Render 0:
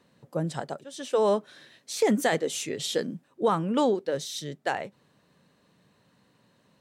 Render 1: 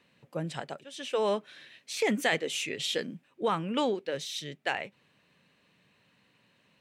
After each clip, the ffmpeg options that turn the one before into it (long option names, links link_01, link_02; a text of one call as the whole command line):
ffmpeg -i in.wav -af "equalizer=frequency=2500:width=1.4:gain=13,volume=-5.5dB" out.wav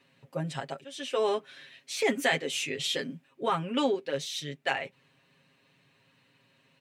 ffmpeg -i in.wav -af "aecho=1:1:7.4:0.8,volume=-1dB" out.wav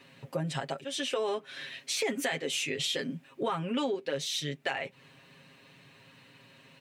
ffmpeg -i in.wav -filter_complex "[0:a]asplit=2[link_01][link_02];[link_02]alimiter=limit=-23dB:level=0:latency=1,volume=-2dB[link_03];[link_01][link_03]amix=inputs=2:normalize=0,acompressor=threshold=-36dB:ratio=3,volume=4dB" out.wav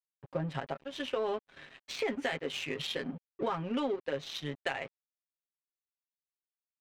ffmpeg -i in.wav -af "aeval=exprs='sgn(val(0))*max(abs(val(0))-0.00596,0)':channel_layout=same,adynamicsmooth=sensitivity=2.5:basefreq=2400" out.wav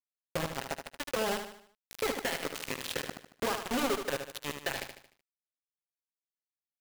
ffmpeg -i in.wav -af "acrusher=bits=4:mix=0:aa=0.000001,aecho=1:1:75|150|225|300|375:0.422|0.186|0.0816|0.0359|0.0158,volume=-1dB" out.wav